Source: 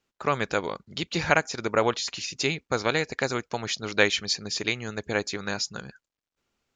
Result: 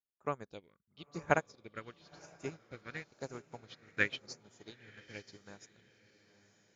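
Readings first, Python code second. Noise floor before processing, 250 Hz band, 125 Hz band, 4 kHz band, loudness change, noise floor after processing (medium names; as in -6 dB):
under -85 dBFS, -14.5 dB, -13.0 dB, -21.0 dB, -12.5 dB, -79 dBFS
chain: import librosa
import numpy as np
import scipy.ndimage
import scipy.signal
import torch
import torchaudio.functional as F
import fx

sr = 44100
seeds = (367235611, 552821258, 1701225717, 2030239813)

y = fx.phaser_stages(x, sr, stages=4, low_hz=730.0, high_hz=4300.0, hz=0.95, feedback_pct=35)
y = fx.echo_diffused(y, sr, ms=951, feedback_pct=52, wet_db=-7)
y = fx.upward_expand(y, sr, threshold_db=-34.0, expansion=2.5)
y = F.gain(torch.from_numpy(y), -5.0).numpy()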